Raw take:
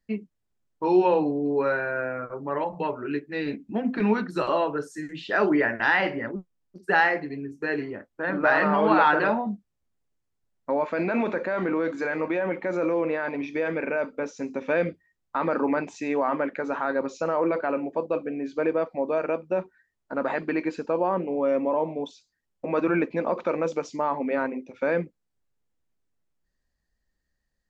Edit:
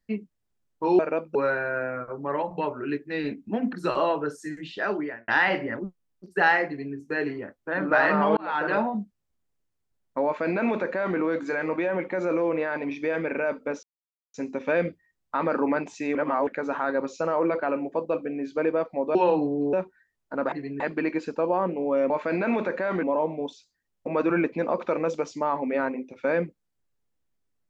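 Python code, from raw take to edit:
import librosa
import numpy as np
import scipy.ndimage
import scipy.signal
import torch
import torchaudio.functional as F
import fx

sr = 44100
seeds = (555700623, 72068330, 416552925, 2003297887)

y = fx.edit(x, sr, fx.swap(start_s=0.99, length_s=0.58, other_s=19.16, other_length_s=0.36),
    fx.cut(start_s=3.95, length_s=0.3),
    fx.fade_out_span(start_s=5.09, length_s=0.71),
    fx.duplicate(start_s=7.19, length_s=0.28, to_s=20.31),
    fx.fade_in_span(start_s=8.89, length_s=0.45),
    fx.duplicate(start_s=10.77, length_s=0.93, to_s=21.61),
    fx.insert_silence(at_s=14.35, length_s=0.51),
    fx.reverse_span(start_s=16.16, length_s=0.32), tone=tone)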